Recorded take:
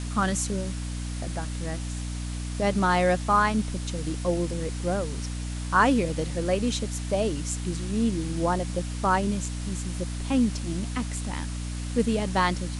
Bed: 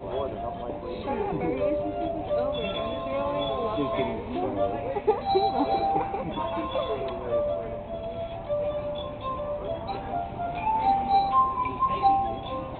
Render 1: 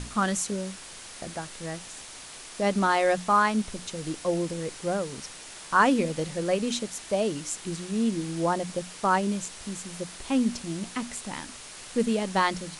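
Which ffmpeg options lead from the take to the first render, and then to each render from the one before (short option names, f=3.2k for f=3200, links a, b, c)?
-af "bandreject=f=60:t=h:w=6,bandreject=f=120:t=h:w=6,bandreject=f=180:t=h:w=6,bandreject=f=240:t=h:w=6,bandreject=f=300:t=h:w=6"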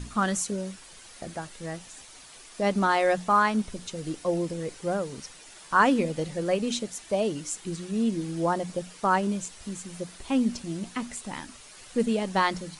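-af "afftdn=nr=8:nf=-44"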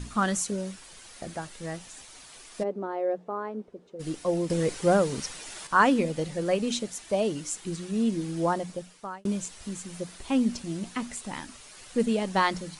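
-filter_complex "[0:a]asplit=3[a][b][c];[a]afade=t=out:st=2.62:d=0.02[d];[b]bandpass=f=430:t=q:w=2.5,afade=t=in:st=2.62:d=0.02,afade=t=out:st=3.99:d=0.02[e];[c]afade=t=in:st=3.99:d=0.02[f];[d][e][f]amix=inputs=3:normalize=0,asplit=4[g][h][i][j];[g]atrim=end=4.502[k];[h]atrim=start=4.498:end=5.672,asetpts=PTS-STARTPTS,volume=7dB[l];[i]atrim=start=5.668:end=9.25,asetpts=PTS-STARTPTS,afade=t=out:st=2.802:d=0.78[m];[j]atrim=start=9.25,asetpts=PTS-STARTPTS,afade=t=in:d=0.004:c=hsin[n];[k][l]acrossfade=d=0.004:c1=hsin:c2=hsin[o];[m][n]concat=n=2:v=0:a=1[p];[o][p]acrossfade=d=0.004:c1=hsin:c2=hsin"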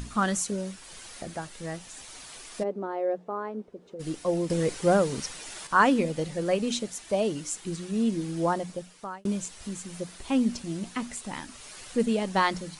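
-af "acompressor=mode=upward:threshold=-38dB:ratio=2.5"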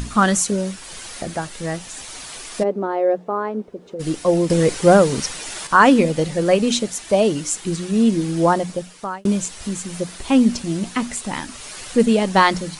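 -af "volume=10dB,alimiter=limit=-1dB:level=0:latency=1"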